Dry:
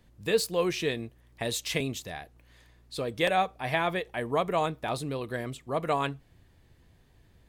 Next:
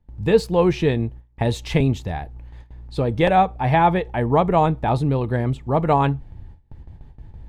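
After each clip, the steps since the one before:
RIAA equalisation playback
noise gate with hold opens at −37 dBFS
parametric band 860 Hz +13 dB 0.2 octaves
level +6 dB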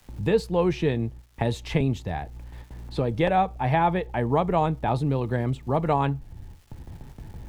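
surface crackle 590 per second −50 dBFS
multiband upward and downward compressor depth 40%
level −5 dB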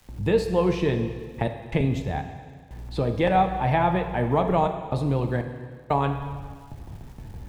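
gate pattern "xxxxxx.xx..xx" 61 BPM −60 dB
surface crackle 79 per second −51 dBFS
dense smooth reverb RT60 1.8 s, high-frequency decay 0.95×, DRR 6 dB

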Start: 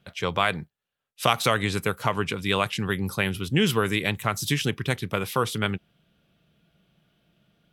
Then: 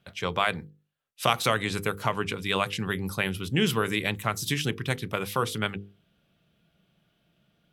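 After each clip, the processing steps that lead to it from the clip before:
mains-hum notches 50/100/150/200/250/300/350/400/450/500 Hz
level −2 dB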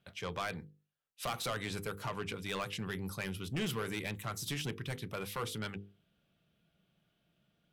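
soft clipping −23.5 dBFS, distortion −7 dB
level −7 dB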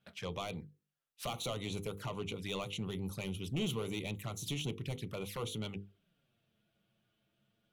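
flanger swept by the level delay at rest 9.6 ms, full sweep at −37 dBFS
level +1 dB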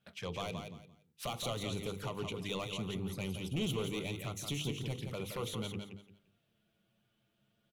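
repeating echo 172 ms, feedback 24%, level −6.5 dB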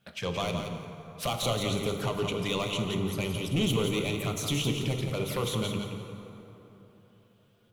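dense smooth reverb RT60 3.5 s, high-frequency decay 0.5×, DRR 6 dB
level +8 dB

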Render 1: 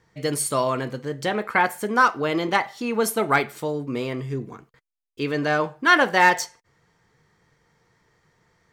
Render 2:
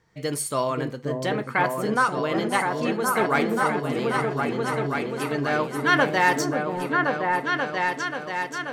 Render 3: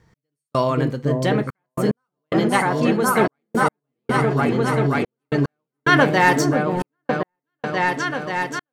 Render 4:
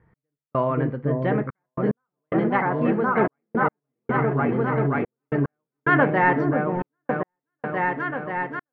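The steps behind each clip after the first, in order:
on a send: echo whose low-pass opens from repeat to repeat 534 ms, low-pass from 400 Hz, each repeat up 2 octaves, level 0 dB; on the sum: amplitude modulation by smooth noise, depth 60%
low-shelf EQ 250 Hz +9 dB; gate pattern "x...xxxxxxx.." 110 BPM −60 dB; level +3.5 dB
low-pass filter 2,100 Hz 24 dB per octave; level −3 dB

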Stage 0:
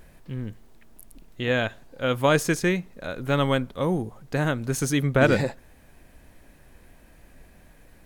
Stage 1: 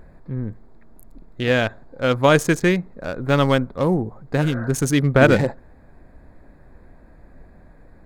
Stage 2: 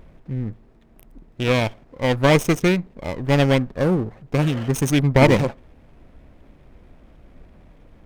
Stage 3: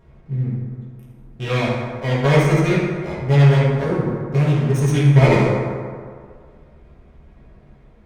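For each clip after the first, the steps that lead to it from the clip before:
adaptive Wiener filter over 15 samples; healed spectral selection 0:04.44–0:04.65, 470–2,000 Hz after; level +5.5 dB
lower of the sound and its delayed copy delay 0.35 ms
convolution reverb RT60 2.0 s, pre-delay 3 ms, DRR −10 dB; level −10 dB

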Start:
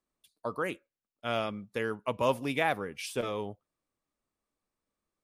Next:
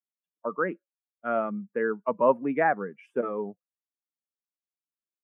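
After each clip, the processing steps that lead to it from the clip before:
spectral dynamics exaggerated over time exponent 1.5
elliptic band-pass filter 180–1,700 Hz, stop band 40 dB
level +8 dB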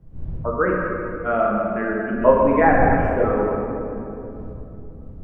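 wind on the microphone 100 Hz −42 dBFS
healed spectral selection 0:01.63–0:02.22, 450–1,400 Hz before
rectangular room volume 140 cubic metres, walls hard, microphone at 0.62 metres
level +4 dB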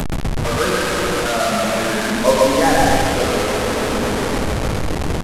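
linear delta modulator 64 kbit/s, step −13.5 dBFS
single-tap delay 132 ms −4 dB
level −1 dB

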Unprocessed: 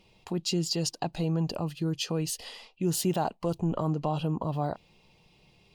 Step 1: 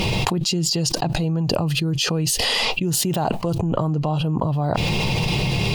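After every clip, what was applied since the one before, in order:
parametric band 120 Hz +8.5 dB 0.74 octaves
envelope flattener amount 100%
level +1 dB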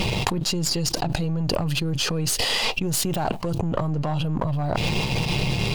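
gain on one half-wave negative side −7 dB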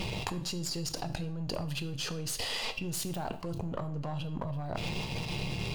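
tuned comb filter 89 Hz, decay 0.56 s, harmonics all, mix 40%
convolution reverb RT60 0.50 s, pre-delay 6 ms, DRR 11.5 dB
level −8 dB

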